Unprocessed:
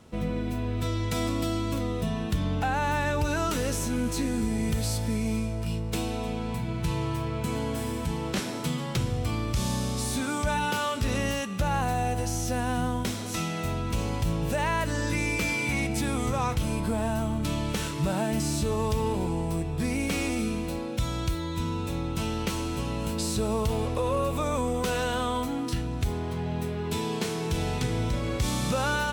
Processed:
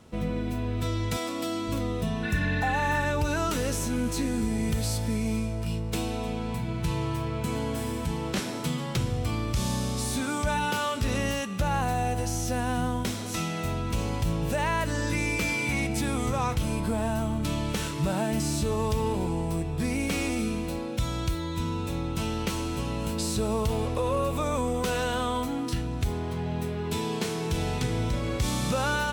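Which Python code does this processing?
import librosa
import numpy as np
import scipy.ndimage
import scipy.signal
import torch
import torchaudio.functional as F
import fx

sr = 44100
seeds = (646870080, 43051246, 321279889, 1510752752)

y = fx.highpass(x, sr, hz=fx.line((1.16, 440.0), (1.67, 180.0)), slope=12, at=(1.16, 1.67), fade=0.02)
y = fx.spec_repair(y, sr, seeds[0], start_s=2.26, length_s=0.77, low_hz=1300.0, high_hz=5000.0, source='after')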